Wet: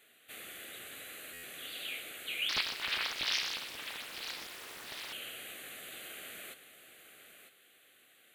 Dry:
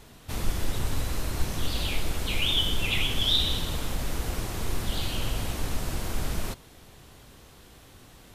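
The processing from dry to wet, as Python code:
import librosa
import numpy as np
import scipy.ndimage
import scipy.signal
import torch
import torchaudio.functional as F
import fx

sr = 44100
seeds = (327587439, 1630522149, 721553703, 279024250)

y = scipy.signal.sosfilt(scipy.signal.butter(2, 690.0, 'highpass', fs=sr, output='sos'), x)
y = fx.fixed_phaser(y, sr, hz=2300.0, stages=4)
y = y + 10.0 ** (-10.0 / 20.0) * np.pad(y, (int(950 * sr / 1000.0), 0))[:len(y)]
y = fx.buffer_glitch(y, sr, at_s=(1.33,), block=512, repeats=8)
y = fx.doppler_dist(y, sr, depth_ms=0.88, at=(2.49, 5.13))
y = y * librosa.db_to_amplitude(-4.5)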